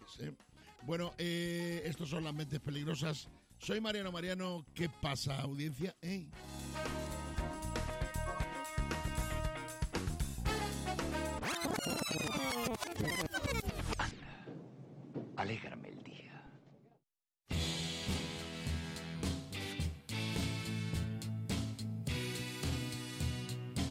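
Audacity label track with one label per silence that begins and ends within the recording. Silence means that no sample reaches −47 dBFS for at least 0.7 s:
16.490000	17.500000	silence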